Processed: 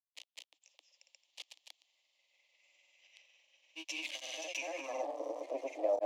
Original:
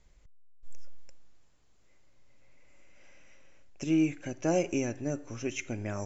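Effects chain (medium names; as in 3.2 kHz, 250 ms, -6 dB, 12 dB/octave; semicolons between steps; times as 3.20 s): jump at every zero crossing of -33 dBFS; steep high-pass 300 Hz 96 dB/octave; peak limiter -23 dBFS, peak gain reduction 7 dB; static phaser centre 390 Hz, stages 6; granulator, spray 205 ms, pitch spread up and down by 0 st; band-pass sweep 3.1 kHz -> 550 Hz, 4.53–5.17 s; trim +10.5 dB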